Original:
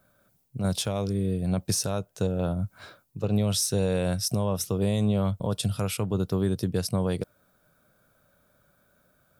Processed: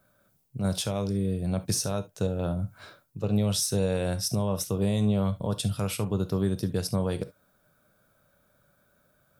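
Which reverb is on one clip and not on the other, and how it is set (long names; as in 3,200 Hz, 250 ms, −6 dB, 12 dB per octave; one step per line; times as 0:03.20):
reverb whose tail is shaped and stops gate 90 ms flat, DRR 10.5 dB
level −1.5 dB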